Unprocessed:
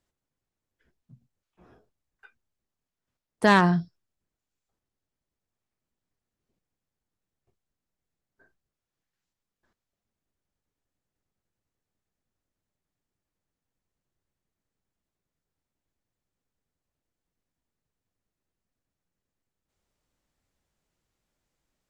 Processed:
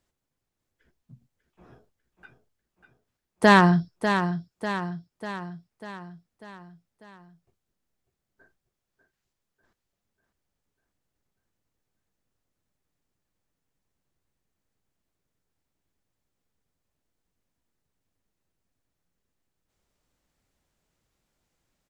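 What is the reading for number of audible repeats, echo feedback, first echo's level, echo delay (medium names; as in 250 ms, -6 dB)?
5, 54%, -8.5 dB, 595 ms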